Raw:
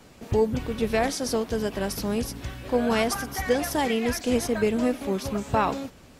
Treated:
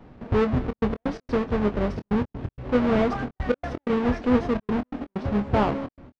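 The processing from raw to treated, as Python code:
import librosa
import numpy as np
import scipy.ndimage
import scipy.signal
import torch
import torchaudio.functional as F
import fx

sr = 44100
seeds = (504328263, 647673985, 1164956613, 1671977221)

p1 = fx.halfwave_hold(x, sr)
p2 = p1 + fx.echo_single(p1, sr, ms=210, db=-20.5, dry=0)
p3 = fx.step_gate(p2, sr, bpm=128, pattern='xxxxxx.x.x.', floor_db=-60.0, edge_ms=4.5)
p4 = fx.spacing_loss(p3, sr, db_at_10k=41)
y = fx.doubler(p4, sr, ms=24.0, db=-10)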